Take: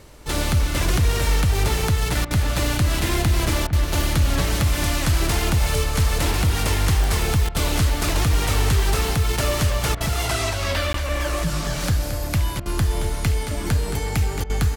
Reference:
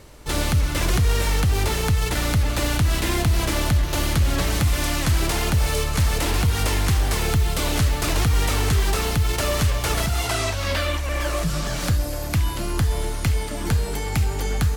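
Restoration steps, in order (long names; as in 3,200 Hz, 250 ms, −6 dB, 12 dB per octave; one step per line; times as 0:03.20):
click removal
repair the gap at 0:10.93, 13 ms
repair the gap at 0:02.25/0:03.67/0:07.49/0:09.95/0:12.60/0:14.44, 56 ms
echo removal 222 ms −9 dB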